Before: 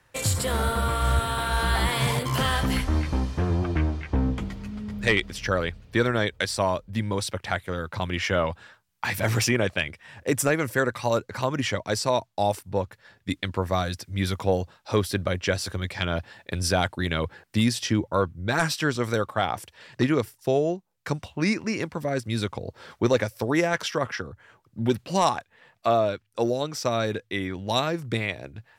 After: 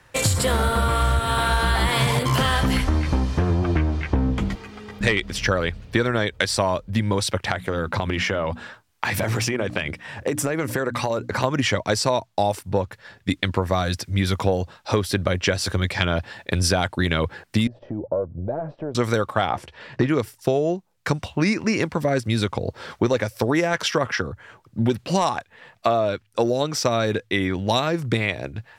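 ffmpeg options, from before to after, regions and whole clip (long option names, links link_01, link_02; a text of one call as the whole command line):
ffmpeg -i in.wav -filter_complex "[0:a]asettb=1/sr,asplit=3[link_01][link_02][link_03];[link_01]atrim=end=4.554[link_04];[link_02]atrim=start=4.55:end=5.01,asetpts=PTS-STARTPTS,afade=type=in:duration=0.004:curve=qsin,afade=type=out:start_time=0.456:duration=0.004:curve=qsin,acrossover=split=2700[link_05][link_06];[link_06]acompressor=threshold=-58dB:ratio=4:attack=1:release=60[link_07];[link_05][link_07]amix=inputs=2:normalize=0,highpass=frequency=580:poles=1,aecho=1:1:2.5:0.6,atrim=end_sample=20286[link_08];[link_03]atrim=start=5.006[link_09];[link_04][link_08]acrossfade=duration=0.004:curve1=hsin:curve2=qsin[link_10];[link_10][link_09]acrossfade=duration=0.004:curve1=qsin:curve2=hsin,asettb=1/sr,asplit=3[link_11][link_12][link_13];[link_11]atrim=end=7.514[link_14];[link_12]atrim=start=7.51:end=11.44,asetpts=PTS-STARTPTS,afade=type=in:duration=0.004:curve=qsin,afade=type=out:start_time=3.926:duration=0.004:curve=qsin,equalizer=frequency=380:width=0.31:gain=4,bandreject=frequency=60:width_type=h:width=6,bandreject=frequency=120:width_type=h:width=6,bandreject=frequency=180:width_type=h:width=6,bandreject=frequency=240:width_type=h:width=6,bandreject=frequency=300:width_type=h:width=6,acompressor=threshold=-27dB:ratio=10:attack=3.2:release=140:knee=1:detection=peak[link_15];[link_13]atrim=start=11.436[link_16];[link_14][link_15]acrossfade=duration=0.004:curve1=hsin:curve2=qsin[link_17];[link_17][link_16]acrossfade=duration=0.004:curve1=qsin:curve2=hsin,asettb=1/sr,asplit=3[link_18][link_19][link_20];[link_18]atrim=end=17.674[link_21];[link_19]atrim=start=17.67:end=18.95,asetpts=PTS-STARTPTS,afade=type=in:duration=0.004:curve=qsin,afade=type=out:start_time=1.276:duration=0.004:curve=qsin,acompressor=threshold=-34dB:ratio=6:attack=3.2:release=140:knee=1:detection=peak,aeval=exprs='(tanh(20*val(0)+0.25)-tanh(0.25))/20':channel_layout=same,lowpass=frequency=600:width_type=q:width=4.5[link_22];[link_20]atrim=start=18.946[link_23];[link_21][link_22]acrossfade=duration=0.004:curve1=hsin:curve2=qsin[link_24];[link_24][link_23]acrossfade=duration=0.004:curve1=qsin:curve2=hsin,asettb=1/sr,asplit=3[link_25][link_26][link_27];[link_25]atrim=end=19.504[link_28];[link_26]atrim=start=19.5:end=20.09,asetpts=PTS-STARTPTS,afade=type=in:duration=0.004:curve=qsin,afade=type=out:start_time=0.586:duration=0.004:curve=qsin,aemphasis=mode=reproduction:type=75fm,asplit=2[link_29][link_30];[link_30]adelay=14,volume=-10dB[link_31];[link_29][link_31]amix=inputs=2:normalize=0,atrim=end_sample=26019[link_32];[link_27]atrim=start=20.086[link_33];[link_28][link_32]acrossfade=duration=0.004:curve1=hsin:curve2=qsin[link_34];[link_34][link_33]acrossfade=duration=0.004:curve1=qsin:curve2=hsin,highshelf=frequency=12000:gain=-6.5,acompressor=threshold=-25dB:ratio=6,volume=8.5dB" out.wav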